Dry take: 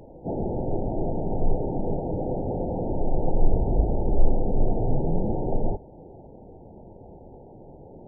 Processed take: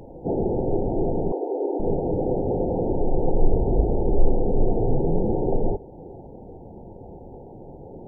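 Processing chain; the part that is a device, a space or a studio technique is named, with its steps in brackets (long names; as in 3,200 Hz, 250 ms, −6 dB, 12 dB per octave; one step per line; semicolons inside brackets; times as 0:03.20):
parallel compression (in parallel at −4 dB: downward compressor, threshold −34 dBFS, peak gain reduction 22 dB)
0:01.32–0:01.80: on the sum: Butterworth high-pass 280 Hz 96 dB per octave
notch filter 620 Hz, Q 14
dynamic equaliser 410 Hz, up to +6 dB, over −43 dBFS, Q 1.7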